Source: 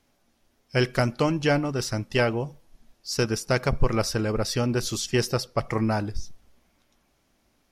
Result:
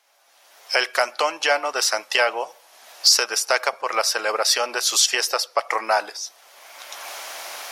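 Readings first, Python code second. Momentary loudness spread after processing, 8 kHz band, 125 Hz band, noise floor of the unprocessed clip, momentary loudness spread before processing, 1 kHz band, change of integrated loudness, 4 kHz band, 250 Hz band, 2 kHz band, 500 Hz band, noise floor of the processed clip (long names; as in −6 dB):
16 LU, +12.5 dB, below −40 dB, −68 dBFS, 6 LU, +8.5 dB, +5.5 dB, +12.0 dB, −16.0 dB, +8.5 dB, +1.0 dB, −55 dBFS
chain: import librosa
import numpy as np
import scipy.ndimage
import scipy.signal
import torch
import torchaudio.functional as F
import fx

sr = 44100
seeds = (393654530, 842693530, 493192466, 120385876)

y = fx.recorder_agc(x, sr, target_db=-12.5, rise_db_per_s=27.0, max_gain_db=30)
y = scipy.signal.sosfilt(scipy.signal.butter(4, 630.0, 'highpass', fs=sr, output='sos'), y)
y = y * librosa.db_to_amplitude(7.0)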